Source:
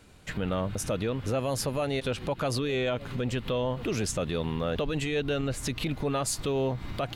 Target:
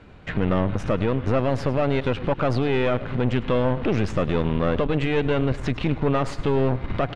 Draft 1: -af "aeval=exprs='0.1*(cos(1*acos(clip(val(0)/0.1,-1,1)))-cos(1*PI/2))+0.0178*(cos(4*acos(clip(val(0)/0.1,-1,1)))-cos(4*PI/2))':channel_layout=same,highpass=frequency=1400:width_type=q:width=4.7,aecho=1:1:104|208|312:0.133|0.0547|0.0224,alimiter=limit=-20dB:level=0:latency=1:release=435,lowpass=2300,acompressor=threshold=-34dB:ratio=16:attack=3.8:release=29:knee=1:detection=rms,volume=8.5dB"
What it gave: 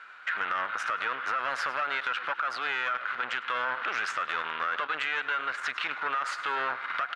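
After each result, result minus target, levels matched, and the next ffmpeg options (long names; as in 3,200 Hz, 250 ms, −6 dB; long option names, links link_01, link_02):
downward compressor: peak gain reduction +9.5 dB; 1,000 Hz band +7.0 dB
-af "aeval=exprs='0.1*(cos(1*acos(clip(val(0)/0.1,-1,1)))-cos(1*PI/2))+0.0178*(cos(4*acos(clip(val(0)/0.1,-1,1)))-cos(4*PI/2))':channel_layout=same,highpass=frequency=1400:width_type=q:width=4.7,aecho=1:1:104|208|312:0.133|0.0547|0.0224,alimiter=limit=-20dB:level=0:latency=1:release=435,lowpass=2300,volume=8.5dB"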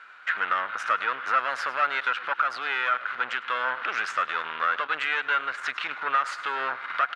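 1,000 Hz band +7.5 dB
-af "aeval=exprs='0.1*(cos(1*acos(clip(val(0)/0.1,-1,1)))-cos(1*PI/2))+0.0178*(cos(4*acos(clip(val(0)/0.1,-1,1)))-cos(4*PI/2))':channel_layout=same,aecho=1:1:104|208|312:0.133|0.0547|0.0224,alimiter=limit=-20dB:level=0:latency=1:release=435,lowpass=2300,volume=8.5dB"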